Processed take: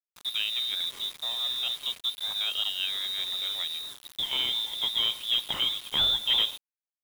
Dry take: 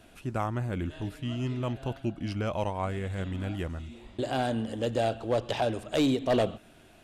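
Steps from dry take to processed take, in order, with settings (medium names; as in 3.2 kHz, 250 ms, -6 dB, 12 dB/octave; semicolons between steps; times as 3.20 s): frequency inversion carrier 3.8 kHz; bit crusher 7-bit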